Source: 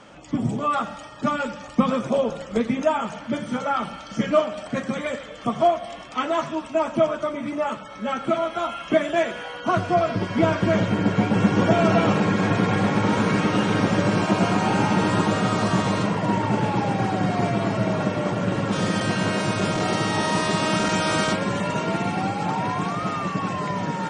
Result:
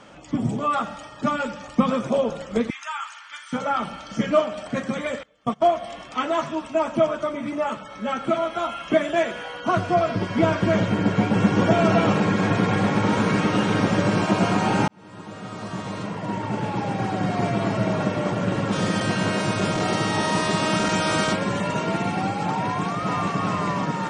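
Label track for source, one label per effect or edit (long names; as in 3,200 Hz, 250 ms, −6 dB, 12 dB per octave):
2.700000	3.530000	inverse Chebyshev high-pass filter stop band from 560 Hz
5.230000	5.670000	noise gate −27 dBFS, range −23 dB
14.880000	17.690000	fade in
22.660000	23.420000	delay throw 420 ms, feedback 45%, level −3 dB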